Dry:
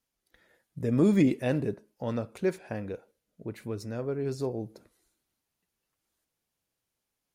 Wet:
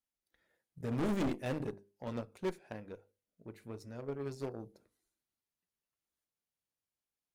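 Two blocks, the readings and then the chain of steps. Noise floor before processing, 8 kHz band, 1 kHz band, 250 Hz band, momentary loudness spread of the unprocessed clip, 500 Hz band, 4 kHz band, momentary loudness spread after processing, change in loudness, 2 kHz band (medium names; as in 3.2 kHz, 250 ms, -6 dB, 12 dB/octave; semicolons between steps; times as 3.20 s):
-85 dBFS, -7.0 dB, -3.0 dB, -11.0 dB, 17 LU, -9.5 dB, -4.5 dB, 18 LU, -9.5 dB, -7.0 dB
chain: hum notches 50/100/150/200/250/300/350/400/450/500 Hz; Chebyshev shaper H 2 -9 dB, 3 -35 dB, 7 -20 dB, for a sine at -12.5 dBFS; overload inside the chain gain 30 dB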